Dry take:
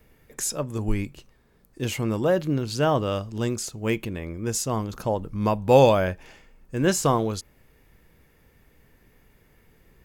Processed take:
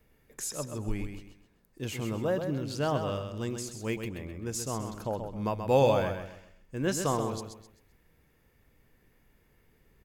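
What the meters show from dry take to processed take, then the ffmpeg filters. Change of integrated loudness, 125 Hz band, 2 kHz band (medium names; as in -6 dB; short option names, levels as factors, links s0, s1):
-7.0 dB, -7.0 dB, -7.0 dB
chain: -af "aecho=1:1:130|260|390|520:0.447|0.147|0.0486|0.0161,volume=0.398"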